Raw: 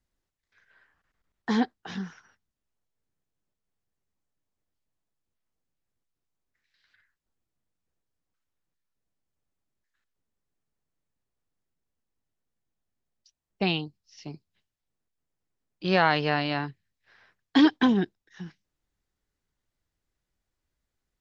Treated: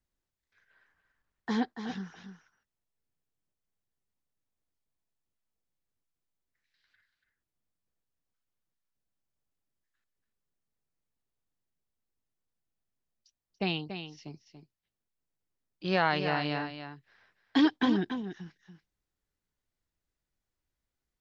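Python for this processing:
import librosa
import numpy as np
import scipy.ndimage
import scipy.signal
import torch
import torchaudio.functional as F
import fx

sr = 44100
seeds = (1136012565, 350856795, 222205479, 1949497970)

y = x + 10.0 ** (-9.0 / 20.0) * np.pad(x, (int(285 * sr / 1000.0), 0))[:len(x)]
y = y * librosa.db_to_amplitude(-5.0)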